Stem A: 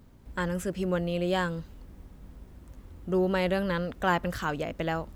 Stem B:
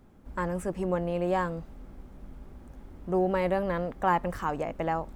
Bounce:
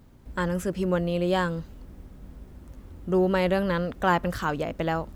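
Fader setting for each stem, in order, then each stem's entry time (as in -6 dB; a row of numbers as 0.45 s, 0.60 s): +1.5 dB, -9.0 dB; 0.00 s, 0.00 s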